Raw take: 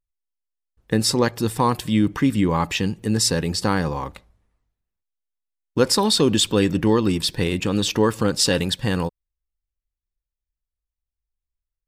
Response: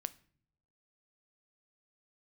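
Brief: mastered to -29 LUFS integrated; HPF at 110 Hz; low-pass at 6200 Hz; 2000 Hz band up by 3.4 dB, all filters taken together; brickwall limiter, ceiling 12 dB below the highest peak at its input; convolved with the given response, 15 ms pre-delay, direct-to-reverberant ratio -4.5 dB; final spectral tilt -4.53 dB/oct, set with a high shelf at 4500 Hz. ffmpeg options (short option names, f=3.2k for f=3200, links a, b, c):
-filter_complex "[0:a]highpass=110,lowpass=6.2k,equalizer=f=2k:t=o:g=5.5,highshelf=f=4.5k:g=-5,alimiter=limit=-16dB:level=0:latency=1,asplit=2[a][b];[1:a]atrim=start_sample=2205,adelay=15[c];[b][c]afir=irnorm=-1:irlink=0,volume=6dB[d];[a][d]amix=inputs=2:normalize=0,volume=-8dB"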